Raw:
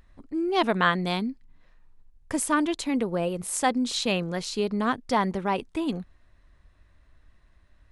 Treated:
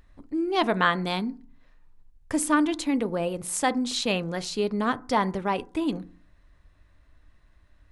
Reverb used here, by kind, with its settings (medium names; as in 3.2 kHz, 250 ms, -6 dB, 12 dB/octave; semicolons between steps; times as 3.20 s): FDN reverb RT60 0.41 s, low-frequency decay 1.35×, high-frequency decay 0.35×, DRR 14 dB